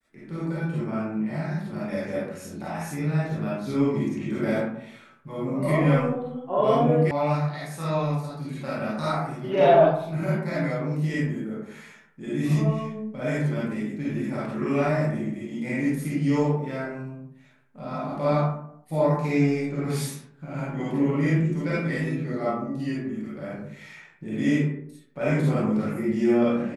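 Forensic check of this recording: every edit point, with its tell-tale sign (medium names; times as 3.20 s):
7.11 s: sound stops dead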